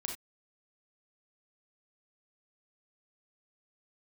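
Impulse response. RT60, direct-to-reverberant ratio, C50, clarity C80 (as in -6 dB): no single decay rate, 1.5 dB, 5.5 dB, 12.5 dB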